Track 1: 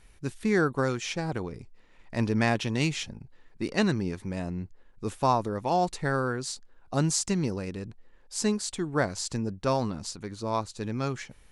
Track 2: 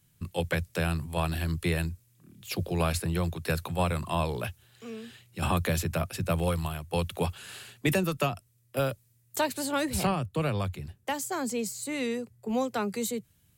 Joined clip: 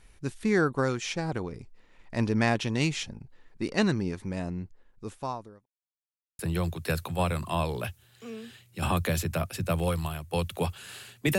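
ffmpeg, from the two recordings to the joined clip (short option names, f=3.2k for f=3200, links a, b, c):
-filter_complex "[0:a]apad=whole_dur=11.38,atrim=end=11.38,asplit=2[a][b];[a]atrim=end=5.66,asetpts=PTS-STARTPTS,afade=t=out:st=4.46:d=1.2[c];[b]atrim=start=5.66:end=6.39,asetpts=PTS-STARTPTS,volume=0[d];[1:a]atrim=start=2.99:end=7.98,asetpts=PTS-STARTPTS,afade=t=in:d=0.004:c=hsin[e];[c][d][e]concat=n=3:v=0:a=1"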